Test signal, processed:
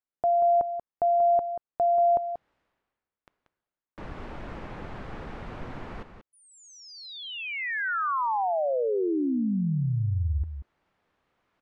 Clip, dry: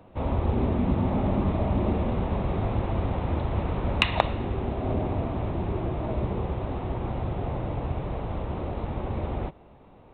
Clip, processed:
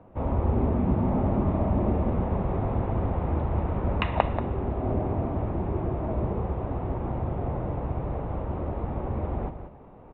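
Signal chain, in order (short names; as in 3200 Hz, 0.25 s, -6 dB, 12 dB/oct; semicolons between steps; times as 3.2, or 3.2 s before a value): reverse; upward compressor, threshold -42 dBFS; reverse; LPF 1600 Hz 12 dB/oct; echo 0.185 s -9.5 dB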